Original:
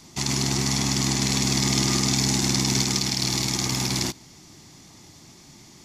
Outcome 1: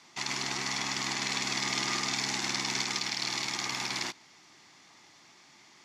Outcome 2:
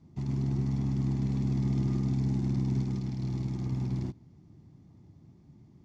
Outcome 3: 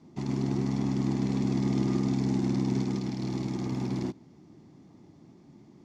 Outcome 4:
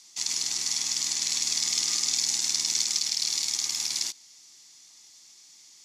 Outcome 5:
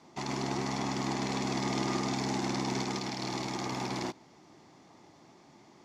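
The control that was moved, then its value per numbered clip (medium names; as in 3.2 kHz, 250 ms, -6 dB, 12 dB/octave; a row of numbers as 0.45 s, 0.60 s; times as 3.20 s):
band-pass filter, frequency: 1.7 kHz, 100 Hz, 260 Hz, 6.5 kHz, 670 Hz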